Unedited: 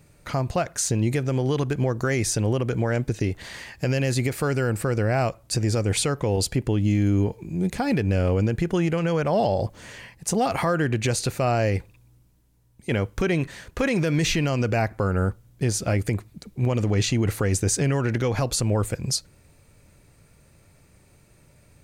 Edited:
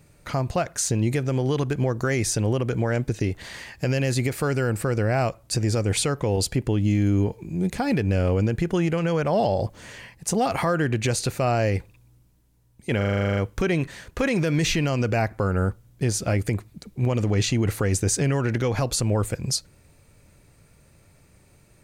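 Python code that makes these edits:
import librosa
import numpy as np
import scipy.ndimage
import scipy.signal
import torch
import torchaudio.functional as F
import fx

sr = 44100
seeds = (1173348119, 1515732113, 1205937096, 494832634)

y = fx.edit(x, sr, fx.stutter(start_s=12.97, slice_s=0.04, count=11), tone=tone)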